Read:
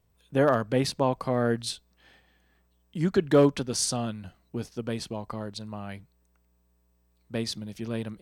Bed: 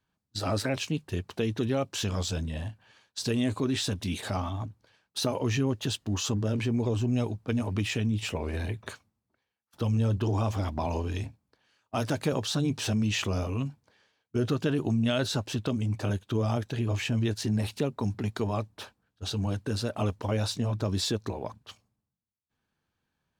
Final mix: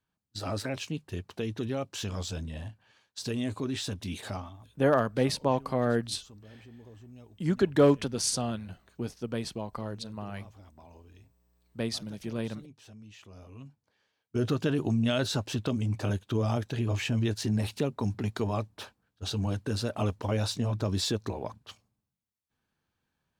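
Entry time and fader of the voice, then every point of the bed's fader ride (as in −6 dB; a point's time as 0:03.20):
4.45 s, −1.5 dB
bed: 0:04.33 −4.5 dB
0:04.72 −23 dB
0:13.22 −23 dB
0:14.42 −0.5 dB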